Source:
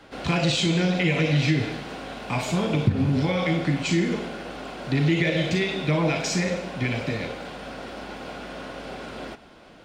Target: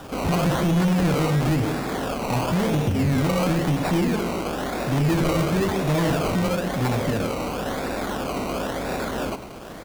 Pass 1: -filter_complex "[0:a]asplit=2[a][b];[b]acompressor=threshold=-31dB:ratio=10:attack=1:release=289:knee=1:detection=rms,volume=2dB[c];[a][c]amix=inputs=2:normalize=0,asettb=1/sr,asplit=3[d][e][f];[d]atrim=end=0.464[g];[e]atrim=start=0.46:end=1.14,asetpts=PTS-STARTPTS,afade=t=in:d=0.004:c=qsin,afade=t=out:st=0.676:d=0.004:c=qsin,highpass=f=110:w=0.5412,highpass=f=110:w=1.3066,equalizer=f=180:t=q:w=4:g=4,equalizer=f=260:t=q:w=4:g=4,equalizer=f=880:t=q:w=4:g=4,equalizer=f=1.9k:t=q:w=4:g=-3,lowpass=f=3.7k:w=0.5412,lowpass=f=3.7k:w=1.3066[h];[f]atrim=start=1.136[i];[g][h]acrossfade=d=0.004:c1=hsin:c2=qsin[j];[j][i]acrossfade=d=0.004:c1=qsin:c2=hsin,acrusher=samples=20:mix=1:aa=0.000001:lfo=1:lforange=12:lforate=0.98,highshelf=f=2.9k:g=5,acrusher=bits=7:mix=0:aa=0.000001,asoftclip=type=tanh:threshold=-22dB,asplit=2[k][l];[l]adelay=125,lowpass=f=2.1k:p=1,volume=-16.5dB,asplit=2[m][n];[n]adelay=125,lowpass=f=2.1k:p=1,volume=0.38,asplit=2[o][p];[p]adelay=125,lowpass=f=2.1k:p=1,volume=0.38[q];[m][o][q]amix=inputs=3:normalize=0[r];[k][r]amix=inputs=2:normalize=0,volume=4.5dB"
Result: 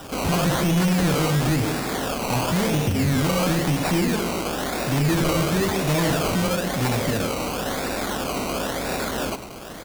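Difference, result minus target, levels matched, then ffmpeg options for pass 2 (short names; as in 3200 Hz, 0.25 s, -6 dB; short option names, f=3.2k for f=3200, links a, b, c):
8000 Hz band +6.0 dB
-filter_complex "[0:a]asplit=2[a][b];[b]acompressor=threshold=-31dB:ratio=10:attack=1:release=289:knee=1:detection=rms,volume=2dB[c];[a][c]amix=inputs=2:normalize=0,asettb=1/sr,asplit=3[d][e][f];[d]atrim=end=0.464[g];[e]atrim=start=0.46:end=1.14,asetpts=PTS-STARTPTS,afade=t=in:d=0.004:c=qsin,afade=t=out:st=0.676:d=0.004:c=qsin,highpass=f=110:w=0.5412,highpass=f=110:w=1.3066,equalizer=f=180:t=q:w=4:g=4,equalizer=f=260:t=q:w=4:g=4,equalizer=f=880:t=q:w=4:g=4,equalizer=f=1.9k:t=q:w=4:g=-3,lowpass=f=3.7k:w=0.5412,lowpass=f=3.7k:w=1.3066[h];[f]atrim=start=1.136[i];[g][h]acrossfade=d=0.004:c1=hsin:c2=qsin[j];[j][i]acrossfade=d=0.004:c1=qsin:c2=hsin,acrusher=samples=20:mix=1:aa=0.000001:lfo=1:lforange=12:lforate=0.98,highshelf=f=2.9k:g=-4.5,acrusher=bits=7:mix=0:aa=0.000001,asoftclip=type=tanh:threshold=-22dB,asplit=2[k][l];[l]adelay=125,lowpass=f=2.1k:p=1,volume=-16.5dB,asplit=2[m][n];[n]adelay=125,lowpass=f=2.1k:p=1,volume=0.38,asplit=2[o][p];[p]adelay=125,lowpass=f=2.1k:p=1,volume=0.38[q];[m][o][q]amix=inputs=3:normalize=0[r];[k][r]amix=inputs=2:normalize=0,volume=4.5dB"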